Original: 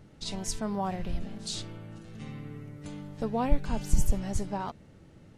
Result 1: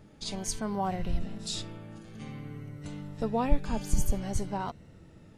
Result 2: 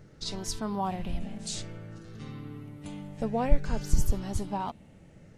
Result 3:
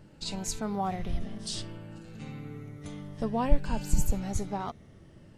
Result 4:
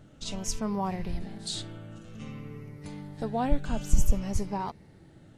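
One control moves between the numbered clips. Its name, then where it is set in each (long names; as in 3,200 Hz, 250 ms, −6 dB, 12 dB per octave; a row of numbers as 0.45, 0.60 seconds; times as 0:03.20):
rippled gain that drifts along the octave scale, ripples per octave: 2, 0.55, 1.3, 0.84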